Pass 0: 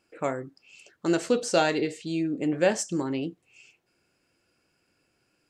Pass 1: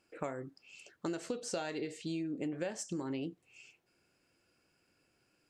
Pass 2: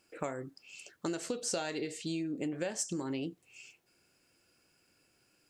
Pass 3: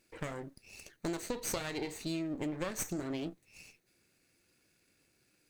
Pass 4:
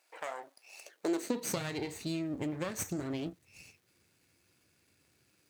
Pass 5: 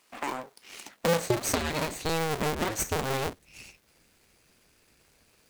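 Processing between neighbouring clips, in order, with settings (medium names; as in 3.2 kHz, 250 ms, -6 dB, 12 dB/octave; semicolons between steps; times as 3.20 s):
compression 12:1, threshold -31 dBFS, peak gain reduction 15 dB; trim -3 dB
treble shelf 4.5 kHz +8 dB; trim +1.5 dB
comb filter that takes the minimum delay 0.47 ms
crackle 460 per s -61 dBFS; high-pass sweep 740 Hz -> 84 Hz, 0.76–1.85 s
cycle switcher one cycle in 2, inverted; trim +7 dB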